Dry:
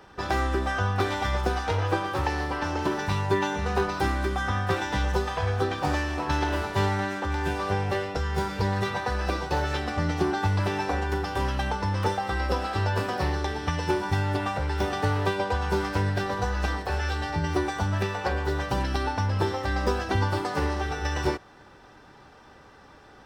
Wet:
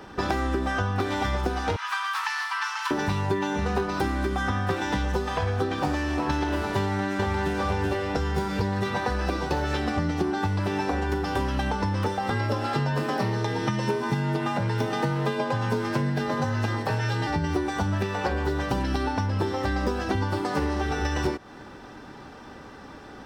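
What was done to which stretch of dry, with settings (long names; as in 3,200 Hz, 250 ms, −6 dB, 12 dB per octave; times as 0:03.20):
0:01.76–0:02.91: Butterworth high-pass 1,000 Hz 48 dB per octave
0:06.81–0:07.56: delay throw 380 ms, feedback 25%, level −1.5 dB
0:12.30–0:17.27: frequency shifter +42 Hz
whole clip: parametric band 250 Hz +7 dB 1 octave; downward compressor, threshold −29 dBFS; level +6 dB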